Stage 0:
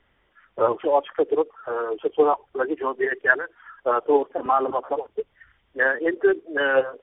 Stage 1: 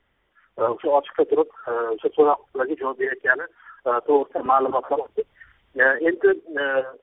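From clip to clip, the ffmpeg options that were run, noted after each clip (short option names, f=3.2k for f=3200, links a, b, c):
-af "dynaudnorm=f=190:g=9:m=11.5dB,volume=-3.5dB"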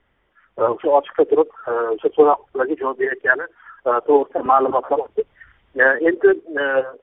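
-af "lowpass=f=2.8k:p=1,volume=4dB"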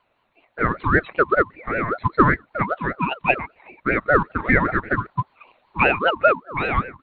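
-af "aeval=exprs='val(0)*sin(2*PI*800*n/s+800*0.3/5.1*sin(2*PI*5.1*n/s))':c=same"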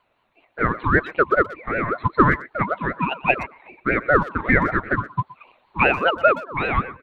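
-filter_complex "[0:a]asplit=2[a][b];[b]adelay=120,highpass=300,lowpass=3.4k,asoftclip=type=hard:threshold=-10dB,volume=-17dB[c];[a][c]amix=inputs=2:normalize=0"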